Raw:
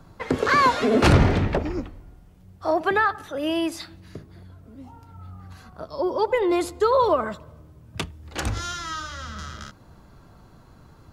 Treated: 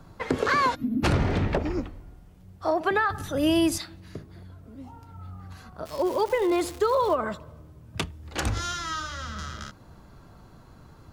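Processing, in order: 5.85–7.14 crackle 440/s -31 dBFS; compressor 4:1, threshold -20 dBFS, peak gain reduction 8 dB; 0.75–1.04 spectral gain 340–11000 Hz -29 dB; 3.1–3.78 tone controls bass +14 dB, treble +9 dB

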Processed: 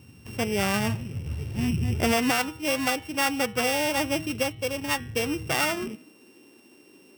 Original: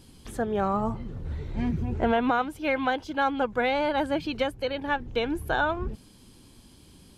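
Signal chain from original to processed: sample sorter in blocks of 16 samples; de-hum 159.1 Hz, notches 26; high-pass sweep 100 Hz -> 350 Hz, 5.32–6.15

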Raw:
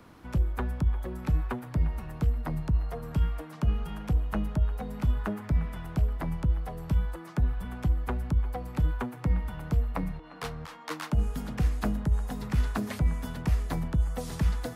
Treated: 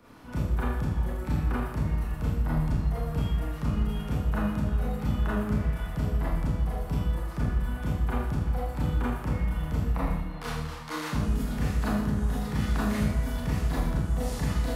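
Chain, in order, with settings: Schroeder reverb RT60 0.88 s, combs from 26 ms, DRR -8.5 dB; gain -5.5 dB

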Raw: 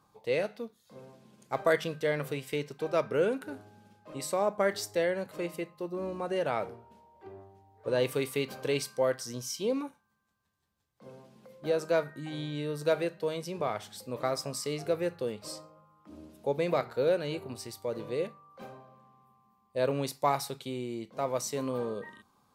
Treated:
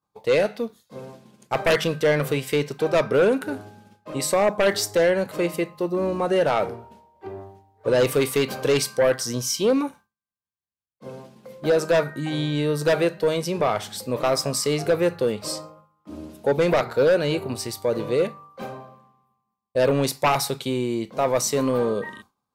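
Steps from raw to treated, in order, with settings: sine folder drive 8 dB, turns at -13.5 dBFS; expander -40 dBFS

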